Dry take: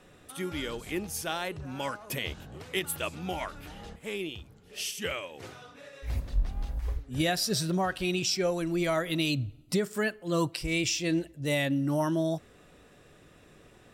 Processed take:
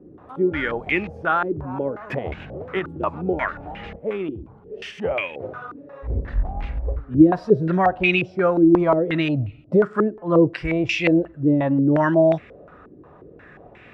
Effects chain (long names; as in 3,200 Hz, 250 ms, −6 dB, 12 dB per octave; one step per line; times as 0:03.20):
high-pass filter 40 Hz
low-pass on a step sequencer 5.6 Hz 330–2,300 Hz
level +7.5 dB